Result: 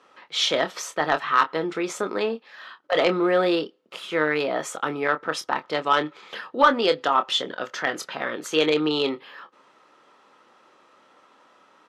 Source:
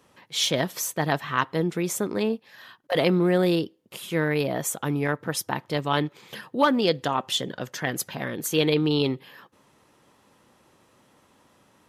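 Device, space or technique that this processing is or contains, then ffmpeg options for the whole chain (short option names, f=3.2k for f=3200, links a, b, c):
intercom: -filter_complex "[0:a]highpass=380,lowpass=4.6k,equalizer=f=1.3k:t=o:w=0.24:g=9,asoftclip=type=tanh:threshold=-10dB,asplit=2[a][b];[b]adelay=26,volume=-9.5dB[c];[a][c]amix=inputs=2:normalize=0,volume=3.5dB"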